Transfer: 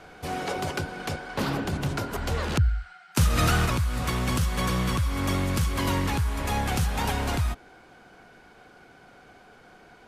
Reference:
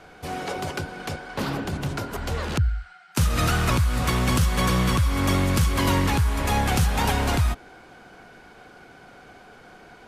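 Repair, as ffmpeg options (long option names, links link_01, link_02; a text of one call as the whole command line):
ffmpeg -i in.wav -af "asetnsamples=nb_out_samples=441:pad=0,asendcmd='3.66 volume volume 4.5dB',volume=0dB" out.wav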